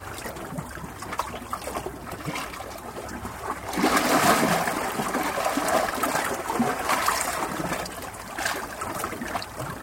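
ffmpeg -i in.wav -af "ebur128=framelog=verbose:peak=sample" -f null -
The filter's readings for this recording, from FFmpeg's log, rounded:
Integrated loudness:
  I:         -26.8 LUFS
  Threshold: -36.8 LUFS
Loudness range:
  LRA:         9.9 LU
  Threshold: -45.9 LUFS
  LRA low:   -33.6 LUFS
  LRA high:  -23.6 LUFS
Sample peak:
  Peak:       -6.8 dBFS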